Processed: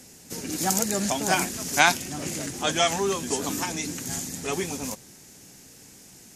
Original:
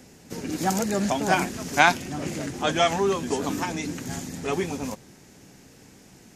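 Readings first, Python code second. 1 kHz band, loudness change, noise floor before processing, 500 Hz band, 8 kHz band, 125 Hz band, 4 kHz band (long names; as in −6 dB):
−2.5 dB, 0.0 dB, −52 dBFS, −3.0 dB, +7.5 dB, −3.0 dB, +2.5 dB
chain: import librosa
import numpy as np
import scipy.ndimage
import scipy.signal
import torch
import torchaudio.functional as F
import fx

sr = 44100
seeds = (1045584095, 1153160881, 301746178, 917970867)

y = fx.peak_eq(x, sr, hz=11000.0, db=13.0, octaves=2.2)
y = y * librosa.db_to_amplitude(-3.0)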